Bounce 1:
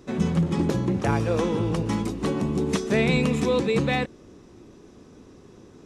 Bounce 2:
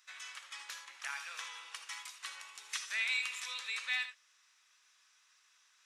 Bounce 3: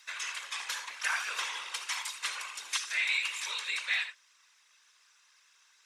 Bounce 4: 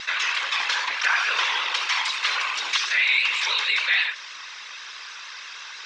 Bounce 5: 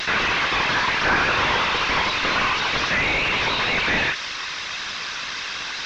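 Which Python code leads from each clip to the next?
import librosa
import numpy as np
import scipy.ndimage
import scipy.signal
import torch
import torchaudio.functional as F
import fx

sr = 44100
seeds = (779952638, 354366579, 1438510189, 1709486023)

y1 = scipy.signal.sosfilt(scipy.signal.butter(4, 1500.0, 'highpass', fs=sr, output='sos'), x)
y1 = fx.rev_gated(y1, sr, seeds[0], gate_ms=100, shape='rising', drr_db=8.0)
y1 = y1 * 10.0 ** (-5.0 / 20.0)
y2 = y1 + 0.34 * np.pad(y1, (int(1.9 * sr / 1000.0), 0))[:len(y1)]
y2 = fx.rider(y2, sr, range_db=3, speed_s=0.5)
y2 = fx.whisperise(y2, sr, seeds[1])
y2 = y2 * 10.0 ** (6.5 / 20.0)
y3 = fx.vibrato(y2, sr, rate_hz=6.3, depth_cents=56.0)
y3 = scipy.signal.sosfilt(scipy.signal.butter(4, 5000.0, 'lowpass', fs=sr, output='sos'), y3)
y3 = fx.env_flatten(y3, sr, amount_pct=50)
y3 = y3 * 10.0 ** (8.5 / 20.0)
y4 = fx.delta_mod(y3, sr, bps=32000, step_db=-36.0)
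y4 = y4 * 10.0 ** (8.5 / 20.0)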